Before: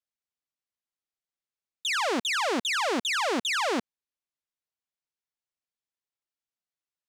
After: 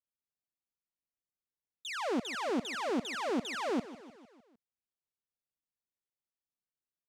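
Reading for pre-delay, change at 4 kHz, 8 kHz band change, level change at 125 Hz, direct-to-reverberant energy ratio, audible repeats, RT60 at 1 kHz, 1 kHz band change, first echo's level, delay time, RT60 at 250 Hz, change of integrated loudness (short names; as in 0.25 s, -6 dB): none, -12.5 dB, -12.5 dB, -0.5 dB, none, 4, none, -8.5 dB, -16.0 dB, 0.152 s, none, -8.0 dB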